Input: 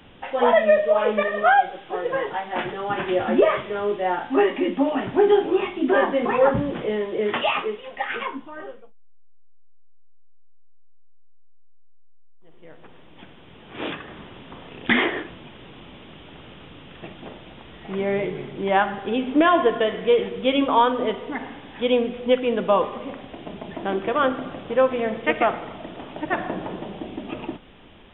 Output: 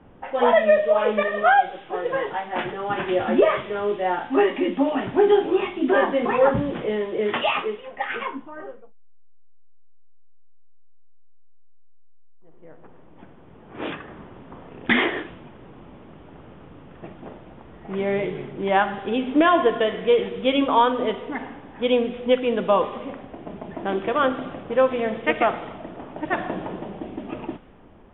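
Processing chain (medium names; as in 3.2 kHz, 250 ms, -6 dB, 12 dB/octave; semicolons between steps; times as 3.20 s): level-controlled noise filter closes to 1.1 kHz, open at -17 dBFS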